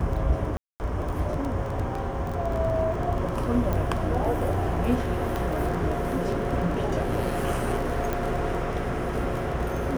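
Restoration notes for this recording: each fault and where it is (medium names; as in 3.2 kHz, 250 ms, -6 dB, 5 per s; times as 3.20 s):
crackle 15 per s -29 dBFS
0.57–0.80 s: dropout 229 ms
1.95 s: dropout 2.9 ms
3.73 s: pop -15 dBFS
5.36 s: pop
8.13 s: pop -14 dBFS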